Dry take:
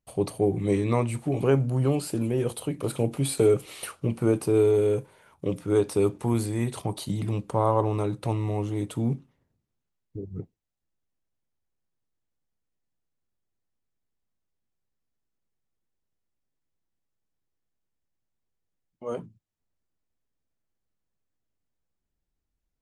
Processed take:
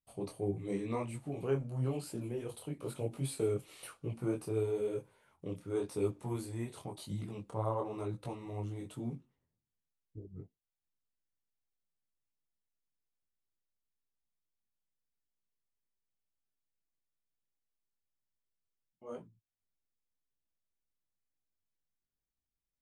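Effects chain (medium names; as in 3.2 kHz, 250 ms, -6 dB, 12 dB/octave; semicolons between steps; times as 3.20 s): detune thickener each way 34 cents; trim -8.5 dB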